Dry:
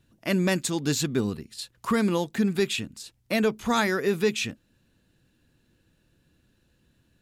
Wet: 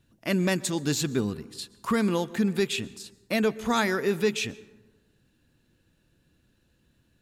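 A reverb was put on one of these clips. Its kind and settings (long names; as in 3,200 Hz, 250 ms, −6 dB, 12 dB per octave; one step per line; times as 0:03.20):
dense smooth reverb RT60 1.2 s, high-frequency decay 0.4×, pre-delay 105 ms, DRR 19 dB
level −1 dB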